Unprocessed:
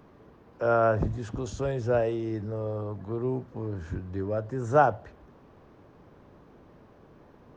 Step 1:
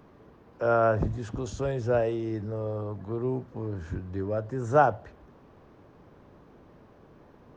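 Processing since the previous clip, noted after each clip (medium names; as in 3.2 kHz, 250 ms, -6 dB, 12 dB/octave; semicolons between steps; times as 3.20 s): no audible change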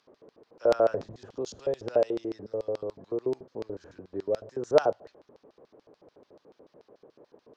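LFO band-pass square 6.9 Hz 480–4700 Hz; trim +6.5 dB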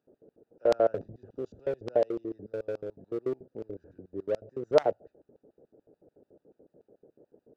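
local Wiener filter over 41 samples; trim -1 dB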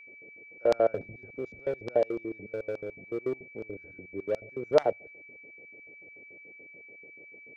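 whistle 2.3 kHz -48 dBFS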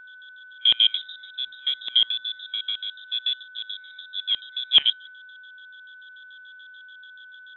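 frequency inversion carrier 3.8 kHz; trim +5 dB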